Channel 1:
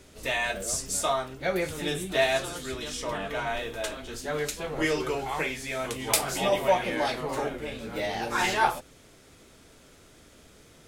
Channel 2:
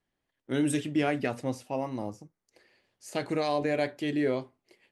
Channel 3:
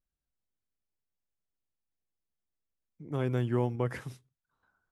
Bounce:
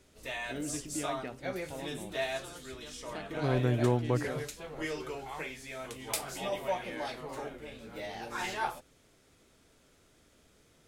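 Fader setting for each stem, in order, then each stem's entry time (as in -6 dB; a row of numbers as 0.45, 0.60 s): -10.0, -11.5, +1.5 dB; 0.00, 0.00, 0.30 s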